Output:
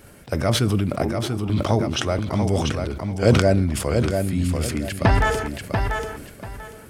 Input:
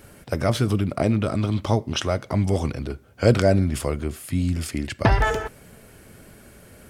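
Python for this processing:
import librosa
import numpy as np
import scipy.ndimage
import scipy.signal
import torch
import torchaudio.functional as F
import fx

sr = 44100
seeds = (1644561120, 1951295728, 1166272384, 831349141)

y = fx.double_bandpass(x, sr, hz=540.0, octaves=1.2, at=(1.02, 1.5))
y = fx.echo_feedback(y, sr, ms=689, feedback_pct=23, wet_db=-5.5)
y = fx.sustainer(y, sr, db_per_s=50.0)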